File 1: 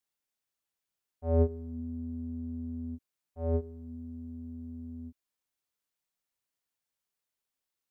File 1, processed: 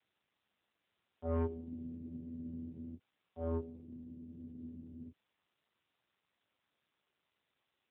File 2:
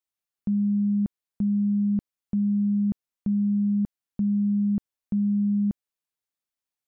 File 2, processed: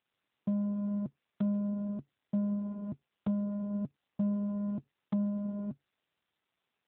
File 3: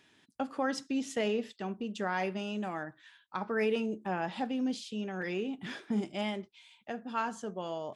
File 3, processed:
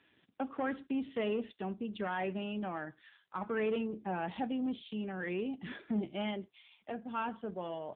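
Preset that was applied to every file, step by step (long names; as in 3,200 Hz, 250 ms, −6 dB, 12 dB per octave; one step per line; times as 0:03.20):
dynamic equaliser 140 Hz, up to +5 dB, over −48 dBFS, Q 5.1
soft clipping −26.5 dBFS
AMR narrowband 7.4 kbit/s 8,000 Hz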